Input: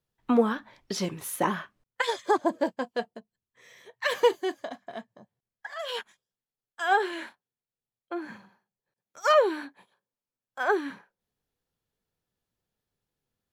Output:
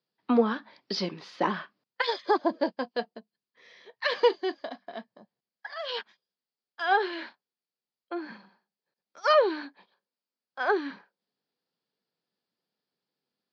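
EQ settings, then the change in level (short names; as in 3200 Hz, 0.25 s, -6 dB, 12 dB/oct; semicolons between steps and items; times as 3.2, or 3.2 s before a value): HPF 180 Hz 24 dB/oct; synth low-pass 4800 Hz, resonance Q 7; air absorption 220 m; 0.0 dB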